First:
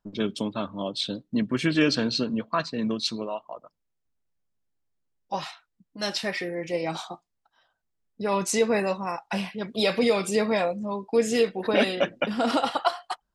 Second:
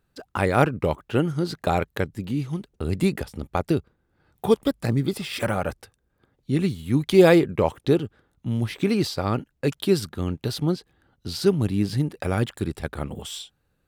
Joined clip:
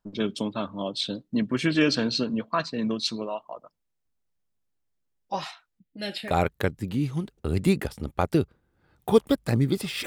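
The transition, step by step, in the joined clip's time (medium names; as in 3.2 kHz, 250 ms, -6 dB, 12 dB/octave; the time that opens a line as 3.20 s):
first
5.79–6.38 s: static phaser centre 2.6 kHz, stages 4
6.28 s: go over to second from 1.64 s, crossfade 0.20 s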